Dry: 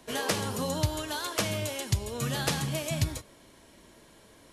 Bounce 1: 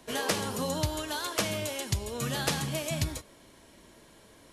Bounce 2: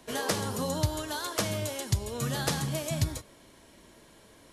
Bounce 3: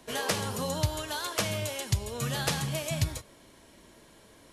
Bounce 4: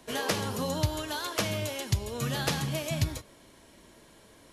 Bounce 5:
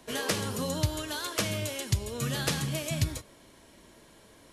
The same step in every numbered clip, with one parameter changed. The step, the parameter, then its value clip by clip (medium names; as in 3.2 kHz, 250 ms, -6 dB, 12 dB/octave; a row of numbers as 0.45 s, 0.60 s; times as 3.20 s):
dynamic bell, frequency: 110 Hz, 2.6 kHz, 290 Hz, 8.6 kHz, 820 Hz